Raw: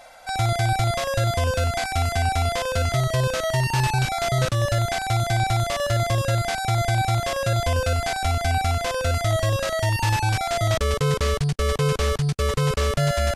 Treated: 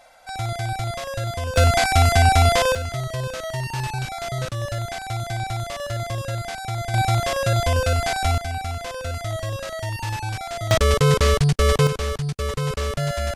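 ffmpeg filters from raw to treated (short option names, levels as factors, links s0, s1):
-af "asetnsamples=n=441:p=0,asendcmd='1.56 volume volume 7dB;2.75 volume volume -5.5dB;6.94 volume volume 2dB;8.38 volume volume -6dB;10.71 volume volume 5dB;11.87 volume volume -3dB',volume=0.562"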